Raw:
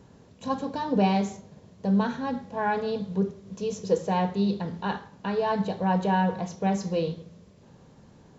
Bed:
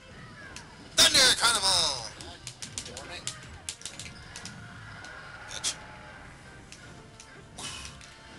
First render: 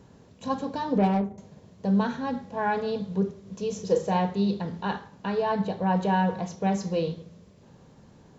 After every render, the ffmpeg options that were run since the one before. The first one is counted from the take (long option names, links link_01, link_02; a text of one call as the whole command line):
ffmpeg -i in.wav -filter_complex "[0:a]asettb=1/sr,asplit=3[link_01][link_02][link_03];[link_01]atrim=end=0.984[link_04];[link_02]atrim=start=0.98:end=1.38,asetpts=PTS-STARTPTS,afade=type=in:duration=0.004:curve=qsin,afade=type=out:start_time=0.396:duration=0.004:curve=qsin,adynamicsmooth=sensitivity=1:basefreq=560[link_05];[link_03]atrim=start=1.376[link_06];[link_04][link_05]acrossfade=duration=0.004:curve1=hsin:curve2=qsin[link_07];[link_07][link_06]acrossfade=duration=0.004:curve1=qsin:curve2=hsin,asettb=1/sr,asplit=3[link_08][link_09][link_10];[link_08]atrim=end=3.714[link_11];[link_09]atrim=start=3.71:end=4.17,asetpts=PTS-STARTPTS,afade=type=in:duration=0.004:curve=qsin,afade=type=out:start_time=0.456:duration=0.004:curve=qsin,asplit=2[link_12][link_13];[link_13]adelay=39,volume=-7.5dB[link_14];[link_12][link_14]amix=inputs=2:normalize=0,atrim=end_sample=20286[link_15];[link_10]atrim=start=4.166[link_16];[link_11][link_15]acrossfade=duration=0.004:curve1=hsin:curve2=qsin[link_17];[link_17][link_16]acrossfade=duration=0.004:curve1=qsin:curve2=hsin,asettb=1/sr,asplit=3[link_18][link_19][link_20];[link_18]atrim=end=5.424[link_21];[link_19]atrim=start=5.42:end=5.96,asetpts=PTS-STARTPTS,afade=type=in:duration=0.004:curve=qsin,afade=type=out:start_time=0.536:duration=0.004:curve=qsin,highshelf=frequency=5200:gain=-6.5[link_22];[link_20]atrim=start=5.956[link_23];[link_21][link_22]acrossfade=duration=0.004:curve1=hsin:curve2=qsin[link_24];[link_24][link_23]acrossfade=duration=0.004:curve1=qsin:curve2=hsin" out.wav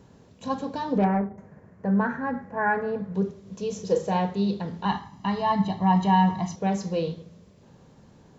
ffmpeg -i in.wav -filter_complex "[0:a]asettb=1/sr,asplit=3[link_01][link_02][link_03];[link_01]atrim=end=1.044[link_04];[link_02]atrim=start=1.04:end=3.15,asetpts=PTS-STARTPTS,afade=type=in:duration=0.004:curve=qsin,afade=type=out:start_time=2.106:duration=0.004:curve=qsin,highshelf=frequency=2500:width_type=q:width=3:gain=-12[link_05];[link_03]atrim=start=3.146[link_06];[link_04][link_05]acrossfade=duration=0.004:curve1=hsin:curve2=qsin[link_07];[link_07][link_06]acrossfade=duration=0.004:curve1=qsin:curve2=hsin,asettb=1/sr,asplit=3[link_08][link_09][link_10];[link_08]atrim=end=4.854[link_11];[link_09]atrim=start=4.85:end=6.56,asetpts=PTS-STARTPTS,afade=type=in:duration=0.004:curve=qsin,afade=type=out:start_time=1.706:duration=0.004:curve=qsin,aecho=1:1:1:0.96,atrim=end_sample=75411[link_12];[link_10]atrim=start=6.556[link_13];[link_11][link_12]acrossfade=duration=0.004:curve1=hsin:curve2=qsin[link_14];[link_14][link_13]acrossfade=duration=0.004:curve1=qsin:curve2=hsin" out.wav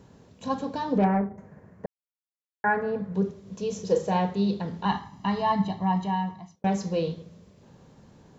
ffmpeg -i in.wav -filter_complex "[0:a]asplit=4[link_01][link_02][link_03][link_04];[link_01]atrim=end=1.86,asetpts=PTS-STARTPTS,afade=type=out:start_time=1.856:duration=0.004:curve=hsin[link_05];[link_02]atrim=start=1.86:end=2.64,asetpts=PTS-STARTPTS,volume=0[link_06];[link_03]atrim=start=2.64:end=6.64,asetpts=PTS-STARTPTS,afade=type=in:duration=0.004:curve=hsin,afade=type=out:start_time=2.78:duration=1.22[link_07];[link_04]atrim=start=6.64,asetpts=PTS-STARTPTS,afade=type=in:duration=0.004:curve=hsin[link_08];[link_05][link_06][link_07][link_08]concat=n=4:v=0:a=1" out.wav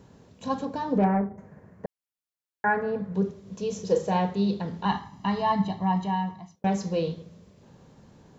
ffmpeg -i in.wav -filter_complex "[0:a]asettb=1/sr,asplit=3[link_01][link_02][link_03];[link_01]atrim=end=0.654[link_04];[link_02]atrim=start=0.65:end=1.39,asetpts=PTS-STARTPTS,afade=type=in:duration=0.004:curve=qsin,afade=type=out:start_time=0.736:duration=0.004:curve=qsin,equalizer=frequency=3800:width_type=o:width=1.4:gain=-5[link_05];[link_03]atrim=start=1.386[link_06];[link_04][link_05]acrossfade=duration=0.004:curve1=hsin:curve2=qsin[link_07];[link_07][link_06]acrossfade=duration=0.004:curve1=qsin:curve2=hsin" out.wav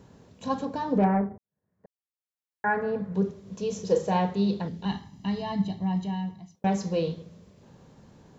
ffmpeg -i in.wav -filter_complex "[0:a]asettb=1/sr,asplit=3[link_01][link_02][link_03];[link_01]atrim=end=4.684[link_04];[link_02]atrim=start=4.68:end=6.55,asetpts=PTS-STARTPTS,afade=type=in:duration=0.004:curve=qsin,afade=type=out:start_time=1.866:duration=0.004:curve=qsin,equalizer=frequency=1100:width_type=o:width=1.5:gain=-13.5[link_05];[link_03]atrim=start=6.546[link_06];[link_04][link_05]acrossfade=duration=0.004:curve1=hsin:curve2=qsin[link_07];[link_07][link_06]acrossfade=duration=0.004:curve1=qsin:curve2=hsin,asplit=2[link_08][link_09];[link_08]atrim=end=1.38,asetpts=PTS-STARTPTS,afade=type=out:start_time=1.376:duration=0.004:curve=hsin[link_10];[link_09]atrim=start=1.38,asetpts=PTS-STARTPTS,afade=type=in:duration=1.46:curve=qua[link_11];[link_10][link_11]concat=n=2:v=0:a=1" out.wav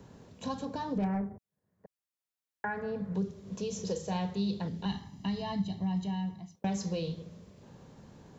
ffmpeg -i in.wav -filter_complex "[0:a]acrossover=split=150|3000[link_01][link_02][link_03];[link_02]acompressor=threshold=-34dB:ratio=6[link_04];[link_01][link_04][link_03]amix=inputs=3:normalize=0" out.wav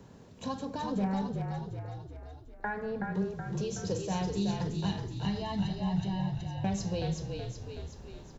ffmpeg -i in.wav -filter_complex "[0:a]asplit=9[link_01][link_02][link_03][link_04][link_05][link_06][link_07][link_08][link_09];[link_02]adelay=374,afreqshift=-41,volume=-4.5dB[link_10];[link_03]adelay=748,afreqshift=-82,volume=-9.5dB[link_11];[link_04]adelay=1122,afreqshift=-123,volume=-14.6dB[link_12];[link_05]adelay=1496,afreqshift=-164,volume=-19.6dB[link_13];[link_06]adelay=1870,afreqshift=-205,volume=-24.6dB[link_14];[link_07]adelay=2244,afreqshift=-246,volume=-29.7dB[link_15];[link_08]adelay=2618,afreqshift=-287,volume=-34.7dB[link_16];[link_09]adelay=2992,afreqshift=-328,volume=-39.8dB[link_17];[link_01][link_10][link_11][link_12][link_13][link_14][link_15][link_16][link_17]amix=inputs=9:normalize=0" out.wav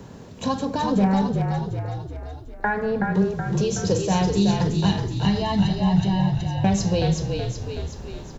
ffmpeg -i in.wav -af "volume=11.5dB" out.wav